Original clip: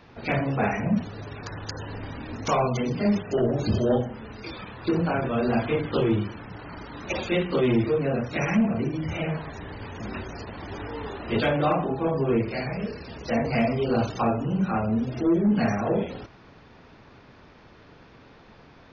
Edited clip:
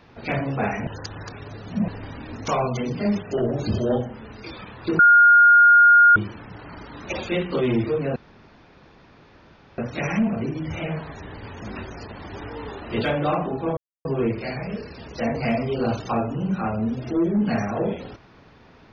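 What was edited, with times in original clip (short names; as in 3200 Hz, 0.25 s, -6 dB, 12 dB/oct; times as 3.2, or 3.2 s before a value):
0.87–1.88 reverse
4.99–6.16 bleep 1420 Hz -9 dBFS
8.16 insert room tone 1.62 s
12.15 insert silence 0.28 s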